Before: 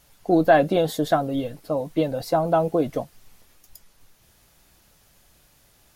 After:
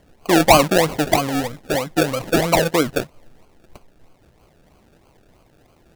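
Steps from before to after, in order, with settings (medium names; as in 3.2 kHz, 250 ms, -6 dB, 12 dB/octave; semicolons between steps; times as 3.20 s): decimation with a swept rate 34×, swing 60% 3.1 Hz; trim +4 dB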